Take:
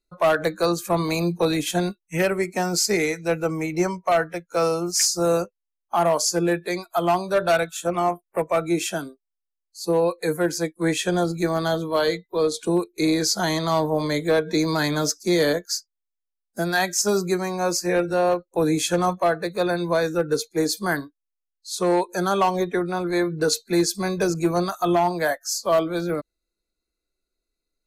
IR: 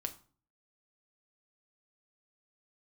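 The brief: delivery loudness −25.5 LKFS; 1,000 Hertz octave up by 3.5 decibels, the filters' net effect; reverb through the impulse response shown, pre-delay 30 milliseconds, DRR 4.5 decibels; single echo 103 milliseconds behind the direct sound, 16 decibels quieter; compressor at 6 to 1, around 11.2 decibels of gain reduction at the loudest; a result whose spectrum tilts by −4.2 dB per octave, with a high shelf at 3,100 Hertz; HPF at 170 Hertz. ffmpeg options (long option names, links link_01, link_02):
-filter_complex "[0:a]highpass=170,equalizer=frequency=1000:width_type=o:gain=5.5,highshelf=frequency=3100:gain=-5.5,acompressor=threshold=-25dB:ratio=6,aecho=1:1:103:0.158,asplit=2[link_01][link_02];[1:a]atrim=start_sample=2205,adelay=30[link_03];[link_02][link_03]afir=irnorm=-1:irlink=0,volume=-4dB[link_04];[link_01][link_04]amix=inputs=2:normalize=0,volume=2.5dB"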